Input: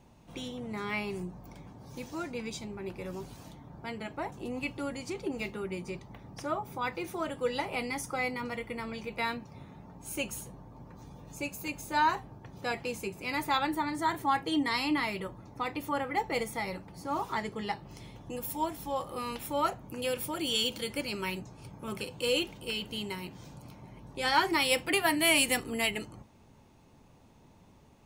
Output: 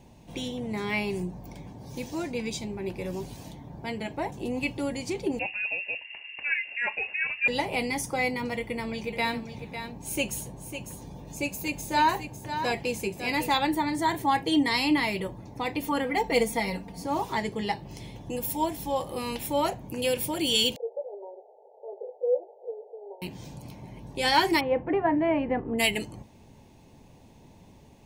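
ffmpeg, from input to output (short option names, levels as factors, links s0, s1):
-filter_complex "[0:a]asettb=1/sr,asplit=3[s0][s1][s2];[s0]atrim=end=5.394[s3];[s1]atrim=start=5.39:end=7.48,asetpts=PTS-STARTPTS,afade=t=in:d=0.004:c=qsin,afade=t=out:st=2.086:d=0.004:c=qsin,lowpass=f=2500:t=q:w=0.5098,lowpass=f=2500:t=q:w=0.6013,lowpass=f=2500:t=q:w=0.9,lowpass=f=2500:t=q:w=2.563,afreqshift=-2900[s4];[s2]atrim=start=7.476[s5];[s3][s4]acrossfade=d=0.004:c1=hsin:c2=qsin[s6];[s6][s5]acrossfade=d=0.004:c1=qsin:c2=hsin,asettb=1/sr,asplit=3[s7][s8][s9];[s7]atrim=end=8.574[s10];[s8]atrim=start=8.57:end=13.54,asetpts=PTS-STARTPTS,afade=t=in:d=0.004:c=qsin,afade=t=out:st=4.966:d=0.004:c=qsin,aecho=1:1:551:0.335,atrim=end_sample=219177[s11];[s9]atrim=start=13.536[s12];[s10][s11]acrossfade=d=0.004:c1=hsin:c2=qsin[s13];[s13][s12]acrossfade=d=0.004:c1=qsin:c2=hsin,asettb=1/sr,asplit=3[s14][s15][s16];[s14]atrim=end=15.824[s17];[s15]atrim=start=15.82:end=17.06,asetpts=PTS-STARTPTS,afade=t=in:d=0.004:c=qsin,afade=t=out:st=1.236:d=0.004:c=qsin,aecho=1:1:4.3:0.62,atrim=end_sample=54684[s18];[s16]atrim=start=17.056[s19];[s17][s18]acrossfade=d=0.004:c1=hsin:c2=qsin[s20];[s20][s19]acrossfade=d=0.004:c1=qsin:c2=hsin,asettb=1/sr,asplit=3[s21][s22][s23];[s21]atrim=end=20.764[s24];[s22]atrim=start=20.76:end=23.22,asetpts=PTS-STARTPTS,afade=t=in:d=0.004:c=qsin,afade=t=out:st=2.456:d=0.004:c=qsin,asuperpass=centerf=590:order=12:qfactor=1.4[s25];[s23]atrim=start=23.216[s26];[s24][s25]acrossfade=d=0.004:c1=hsin:c2=qsin[s27];[s27][s26]acrossfade=d=0.004:c1=qsin:c2=hsin,asplit=3[s28][s29][s30];[s28]afade=t=out:st=24.59:d=0.02[s31];[s29]lowpass=f=1400:w=0.5412,lowpass=f=1400:w=1.3066,afade=t=in:st=24.59:d=0.02,afade=t=out:st=25.78:d=0.02[s32];[s30]afade=t=in:st=25.78:d=0.02[s33];[s31][s32][s33]amix=inputs=3:normalize=0,equalizer=f=1300:t=o:w=0.41:g=-12.5,volume=2"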